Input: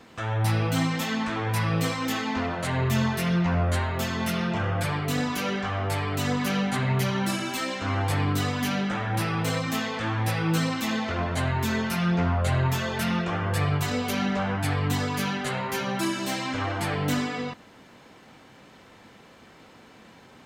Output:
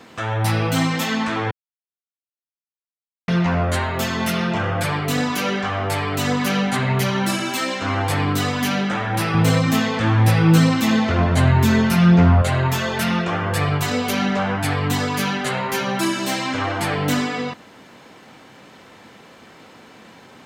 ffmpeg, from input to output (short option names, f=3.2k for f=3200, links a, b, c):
-filter_complex "[0:a]asettb=1/sr,asplit=3[a][b][c];[a]atrim=end=9.344[d];[b]atrim=start=9.34:end=12.42,asetpts=PTS-STARTPTS,afade=t=in:d=0.004:c=qsin,afade=t=out:st=3.076:d=0.004:c=qsin,lowshelf=f=230:g=11.5[e];[c]atrim=start=12.416[f];[d][e]acrossfade=d=0.004:c1=hsin:c2=qsin[g];[g][f]acrossfade=d=0.004:c1=qsin:c2=hsin,asplit=3[h][i][j];[h]atrim=end=1.51,asetpts=PTS-STARTPTS,afade=t=out:st=1.506:d=0.004:c=hsin[k];[i]atrim=start=1.51:end=3.28,asetpts=PTS-STARTPTS,volume=0[l];[j]atrim=start=3.28,asetpts=PTS-STARTPTS,afade=t=in:d=0.004:c=hsin[m];[k][l][m]concat=n=3:v=0:a=1,highpass=f=120:p=1,volume=6.5dB"